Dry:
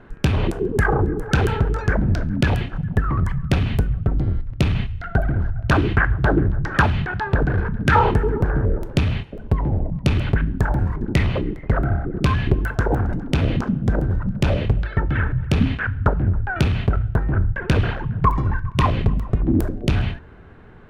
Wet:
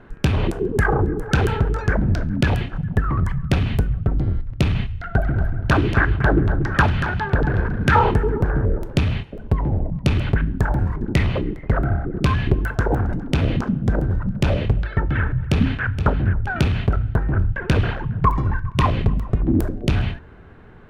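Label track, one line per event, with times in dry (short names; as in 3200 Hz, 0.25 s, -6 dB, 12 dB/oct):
4.900000	8.050000	echo 0.234 s -9 dB
15.170000	15.860000	echo throw 0.47 s, feedback 40%, level -10.5 dB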